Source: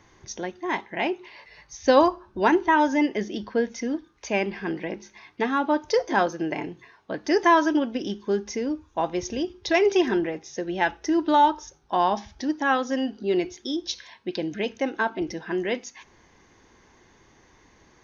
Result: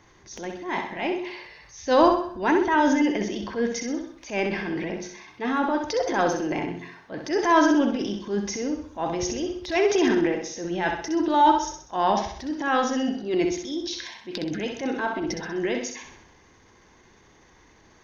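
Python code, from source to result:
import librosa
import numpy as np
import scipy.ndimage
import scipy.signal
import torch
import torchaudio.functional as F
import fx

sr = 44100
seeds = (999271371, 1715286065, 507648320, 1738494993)

y = fx.transient(x, sr, attack_db=-9, sustain_db=7)
y = fx.echo_feedback(y, sr, ms=64, feedback_pct=45, wet_db=-6.0)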